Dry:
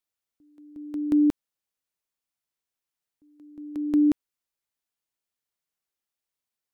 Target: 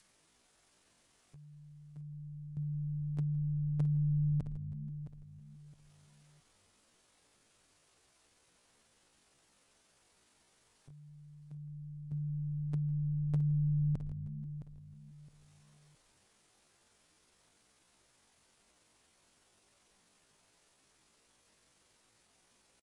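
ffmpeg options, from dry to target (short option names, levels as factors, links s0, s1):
-filter_complex "[0:a]asetrate=22050,aresample=44100,adynamicequalizer=threshold=0.00447:dfrequency=560:dqfactor=1.3:tfrequency=560:tqfactor=1.3:attack=5:release=100:ratio=0.375:range=2:mode=boostabove:tftype=bell,asplit=2[s0][s1];[s1]asplit=3[s2][s3][s4];[s2]adelay=95,afreqshift=-120,volume=0.141[s5];[s3]adelay=190,afreqshift=-240,volume=0.0562[s6];[s4]adelay=285,afreqshift=-360,volume=0.0226[s7];[s5][s6][s7]amix=inputs=3:normalize=0[s8];[s0][s8]amix=inputs=2:normalize=0,acompressor=threshold=0.0141:ratio=3,tiltshelf=f=910:g=3.5,acompressor=mode=upward:threshold=0.00251:ratio=2.5,atempo=0.59,asplit=2[s9][s10];[s10]aecho=0:1:665|1330|1995:0.251|0.0653|0.017[s11];[s9][s11]amix=inputs=2:normalize=0"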